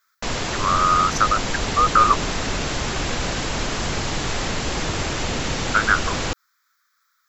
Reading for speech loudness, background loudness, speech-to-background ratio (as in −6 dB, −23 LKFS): −20.0 LKFS, −25.0 LKFS, 5.0 dB